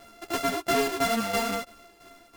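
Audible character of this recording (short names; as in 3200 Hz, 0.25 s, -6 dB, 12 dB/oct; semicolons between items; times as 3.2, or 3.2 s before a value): a buzz of ramps at a fixed pitch in blocks of 64 samples; tremolo saw down 3 Hz, depth 70%; a shimmering, thickened sound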